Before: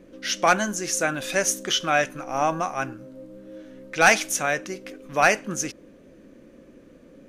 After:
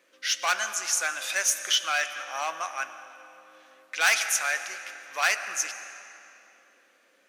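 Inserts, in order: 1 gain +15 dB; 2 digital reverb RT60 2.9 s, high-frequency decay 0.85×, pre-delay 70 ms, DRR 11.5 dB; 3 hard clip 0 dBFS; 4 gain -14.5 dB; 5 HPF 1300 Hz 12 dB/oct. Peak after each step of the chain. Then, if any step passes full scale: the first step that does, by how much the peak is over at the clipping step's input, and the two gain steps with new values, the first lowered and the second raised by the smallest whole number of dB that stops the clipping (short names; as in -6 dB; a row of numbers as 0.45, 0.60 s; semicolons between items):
+7.0, +7.5, 0.0, -14.5, -8.5 dBFS; step 1, 7.5 dB; step 1 +7 dB, step 4 -6.5 dB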